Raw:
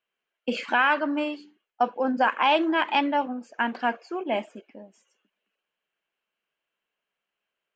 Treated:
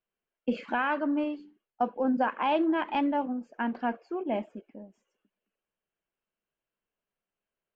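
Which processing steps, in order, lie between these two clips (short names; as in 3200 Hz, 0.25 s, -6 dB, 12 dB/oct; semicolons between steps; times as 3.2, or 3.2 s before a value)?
tilt -3.5 dB/oct; gain -6.5 dB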